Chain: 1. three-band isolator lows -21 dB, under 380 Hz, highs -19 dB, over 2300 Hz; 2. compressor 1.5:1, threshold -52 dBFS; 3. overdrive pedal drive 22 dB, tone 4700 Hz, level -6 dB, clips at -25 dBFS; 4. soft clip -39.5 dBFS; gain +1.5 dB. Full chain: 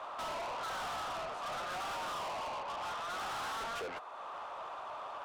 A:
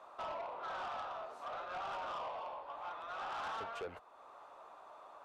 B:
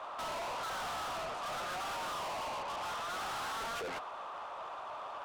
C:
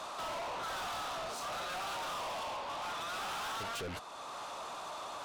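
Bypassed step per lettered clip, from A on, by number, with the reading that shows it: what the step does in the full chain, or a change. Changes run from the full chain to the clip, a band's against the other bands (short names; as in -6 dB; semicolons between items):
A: 3, crest factor change +4.0 dB; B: 2, mean gain reduction 6.0 dB; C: 1, 1 kHz band -3.0 dB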